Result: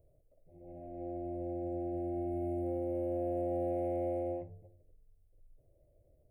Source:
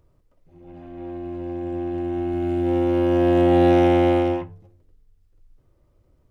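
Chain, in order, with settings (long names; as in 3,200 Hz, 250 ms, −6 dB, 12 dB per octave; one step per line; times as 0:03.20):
drawn EQ curve 140 Hz 0 dB, 210 Hz −6 dB, 360 Hz −1 dB, 650 Hz +10 dB, 980 Hz −20 dB, 1,400 Hz −24 dB, 2,200 Hz −9 dB, 3,200 Hz −25 dB, 5,200 Hz −27 dB, 9,000 Hz +3 dB
downward compressor 4 to 1, threshold −27 dBFS, peak gain reduction 13 dB
level −7 dB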